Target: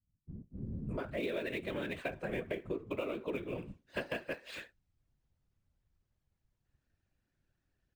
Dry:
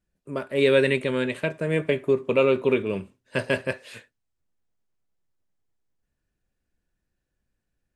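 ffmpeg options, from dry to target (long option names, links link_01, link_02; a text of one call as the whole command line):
ffmpeg -i in.wav -filter_complex "[0:a]lowpass=5700,acrossover=split=150[link_01][link_02];[link_02]adelay=620[link_03];[link_01][link_03]amix=inputs=2:normalize=0,afftfilt=real='hypot(re,im)*cos(2*PI*random(0))':imag='hypot(re,im)*sin(2*PI*random(1))':win_size=512:overlap=0.75,bandreject=frequency=450:width=13,acrossover=split=570|2700[link_04][link_05][link_06];[link_06]acrusher=bits=2:mode=log:mix=0:aa=0.000001[link_07];[link_04][link_05][link_07]amix=inputs=3:normalize=0,acompressor=threshold=-41dB:ratio=6,volume=5.5dB" out.wav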